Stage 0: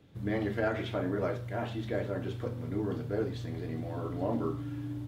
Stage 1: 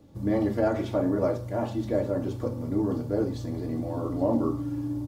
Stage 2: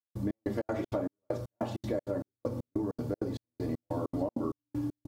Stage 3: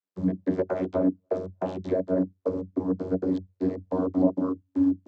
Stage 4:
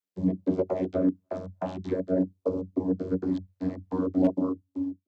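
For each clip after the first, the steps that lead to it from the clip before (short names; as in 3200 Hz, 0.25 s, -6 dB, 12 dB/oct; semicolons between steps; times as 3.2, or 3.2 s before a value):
band shelf 2300 Hz -10.5 dB; comb 3.5 ms, depth 38%; gain +6 dB
low shelf 240 Hz -3.5 dB; step gate "..xx..xx.xx.xx." 196 bpm -60 dB; compressor, threshold -31 dBFS, peak gain reduction 10 dB; gain +2 dB
vocoder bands 32, saw 92.8 Hz; gain +9 dB
ending faded out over 0.64 s; hard clip -14.5 dBFS, distortion -25 dB; LFO notch sine 0.49 Hz 380–1800 Hz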